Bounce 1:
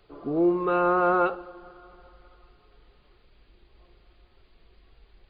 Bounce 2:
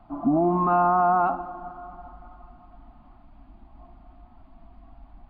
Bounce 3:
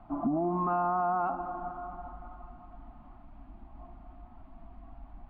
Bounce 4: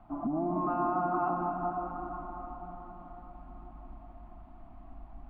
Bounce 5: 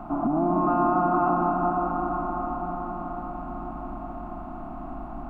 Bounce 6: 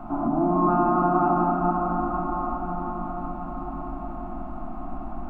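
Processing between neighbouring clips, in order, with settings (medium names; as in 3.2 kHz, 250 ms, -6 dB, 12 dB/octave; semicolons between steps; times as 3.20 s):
FFT filter 150 Hz 0 dB, 270 Hz +11 dB, 470 Hz -30 dB, 670 Hz +9 dB, 1.1 kHz +2 dB, 1.7 kHz -11 dB, 2.8 kHz -15 dB, 4.1 kHz -21 dB; compression, threshold -22 dBFS, peak gain reduction 5 dB; peak limiter -22 dBFS, peak gain reduction 4.5 dB; trim +8 dB
tone controls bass 0 dB, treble -13 dB; compression 4:1, threshold -28 dBFS, peak gain reduction 9 dB
reverberation RT60 5.0 s, pre-delay 114 ms, DRR 1.5 dB; trim -3 dB
spectral levelling over time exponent 0.6; trim +5.5 dB
simulated room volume 60 m³, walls mixed, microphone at 0.47 m; trim -1.5 dB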